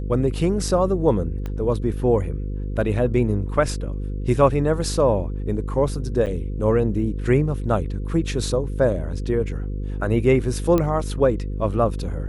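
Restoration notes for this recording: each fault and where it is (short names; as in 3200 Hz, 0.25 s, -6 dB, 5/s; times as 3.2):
buzz 50 Hz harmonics 10 -27 dBFS
1.46 pop -18 dBFS
6.26–6.27 gap 7.9 ms
10.78 pop -9 dBFS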